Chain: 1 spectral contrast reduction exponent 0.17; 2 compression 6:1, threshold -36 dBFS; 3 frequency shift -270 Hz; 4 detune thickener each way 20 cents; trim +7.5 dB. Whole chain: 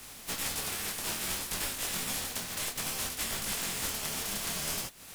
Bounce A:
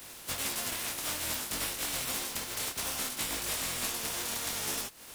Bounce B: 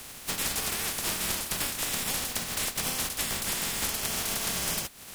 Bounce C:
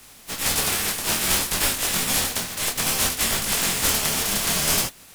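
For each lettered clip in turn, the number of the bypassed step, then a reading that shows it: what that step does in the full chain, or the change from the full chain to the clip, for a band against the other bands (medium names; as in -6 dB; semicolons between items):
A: 3, 125 Hz band -2.5 dB; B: 4, crest factor change +2.0 dB; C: 2, mean gain reduction 10.0 dB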